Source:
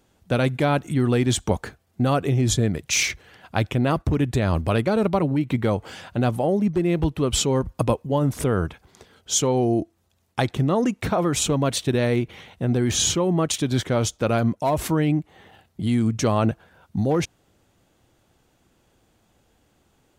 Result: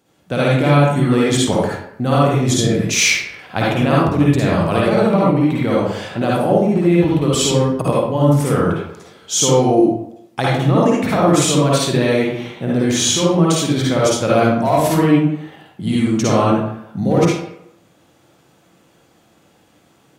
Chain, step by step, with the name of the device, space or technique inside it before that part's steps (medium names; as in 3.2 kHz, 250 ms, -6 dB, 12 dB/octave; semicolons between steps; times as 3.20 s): far laptop microphone (reverberation RT60 0.75 s, pre-delay 48 ms, DRR -6 dB; high-pass 110 Hz; level rider gain up to 4 dB)